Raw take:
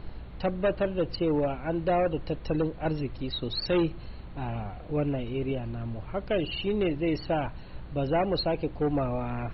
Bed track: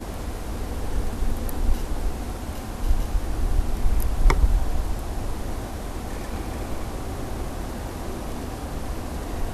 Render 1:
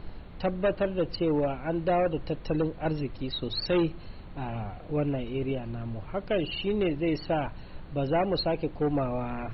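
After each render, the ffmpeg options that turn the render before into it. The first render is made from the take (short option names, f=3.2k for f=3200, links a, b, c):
-af "bandreject=f=60:t=h:w=4,bandreject=f=120:t=h:w=4"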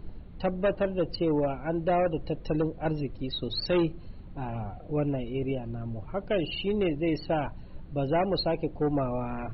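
-af "afftdn=nr=10:nf=-44"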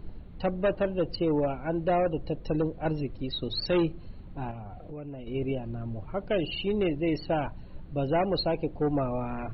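-filter_complex "[0:a]asettb=1/sr,asplit=3[a][b][c];[a]atrim=end=1.984[d];[b]atrim=start=1.98:end=2.66,asetpts=PTS-STARTPTS,afade=t=in:d=0.004:c=qsin,afade=t=out:st=0.676:d=0.004:c=qsin,equalizer=f=2.2k:t=o:w=1.9:g=-2.5[e];[c]atrim=start=2.656[f];[d][e]acrossfade=d=0.004:c1=hsin:c2=qsin[g];[g][f]acrossfade=d=0.004:c1=qsin:c2=hsin,asettb=1/sr,asplit=3[h][i][j];[h]atrim=end=4.514[k];[i]atrim=start=4.51:end=5.27,asetpts=PTS-STARTPTS,afade=t=in:d=0.004:c=qsin,afade=t=out:st=0.756:d=0.004:c=qsin,acompressor=threshold=-37dB:ratio=6:attack=3.2:release=140:knee=1:detection=peak[l];[j]atrim=start=5.266[m];[k][l]acrossfade=d=0.004:c1=hsin:c2=qsin[n];[n][m]acrossfade=d=0.004:c1=qsin:c2=hsin"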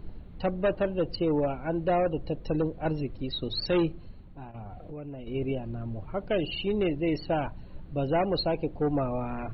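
-filter_complex "[0:a]asplit=2[a][b];[a]atrim=end=4.54,asetpts=PTS-STARTPTS,afade=t=out:st=3.88:d=0.66:silence=0.266073[c];[b]atrim=start=4.54,asetpts=PTS-STARTPTS,afade=t=in:d=0.004:c=hsin:silence=0.266073[d];[c][d]concat=n=2:v=0:a=1"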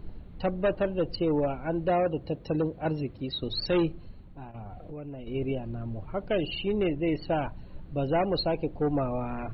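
-filter_complex "[0:a]asettb=1/sr,asplit=3[a][b][c];[a]atrim=end=1.904[d];[b]atrim=start=1.9:end=3.43,asetpts=PTS-STARTPTS,afade=t=in:d=0.004:c=qsin,afade=t=out:st=1.526:d=0.004:c=qsin,highpass=61[e];[c]atrim=start=3.426[f];[d][e]acrossfade=d=0.004:c1=hsin:c2=qsin[g];[g][f]acrossfade=d=0.004:c1=qsin:c2=hsin,asettb=1/sr,asplit=3[h][i][j];[h]atrim=end=6.594[k];[i]atrim=start=6.59:end=7.22,asetpts=PTS-STARTPTS,afade=t=in:d=0.004:c=qsin,afade=t=out:st=0.626:d=0.004:c=qsin,lowpass=f=3.5k:w=0.5412,lowpass=f=3.5k:w=1.3066[l];[j]atrim=start=7.216[m];[k][l]acrossfade=d=0.004:c1=hsin:c2=qsin[n];[n][m]acrossfade=d=0.004:c1=qsin:c2=hsin"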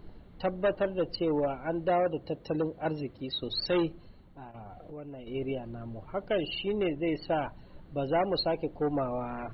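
-af "lowshelf=f=210:g=-9,bandreject=f=2.5k:w=12"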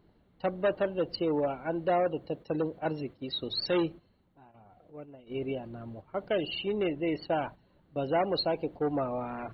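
-af "highpass=f=97:p=1,agate=range=-10dB:threshold=-42dB:ratio=16:detection=peak"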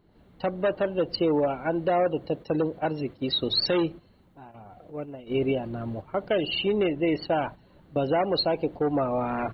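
-af "dynaudnorm=f=100:g=3:m=10dB,alimiter=limit=-15.5dB:level=0:latency=1:release=435"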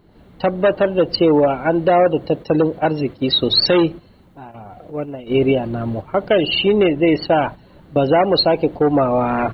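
-af "volume=10dB"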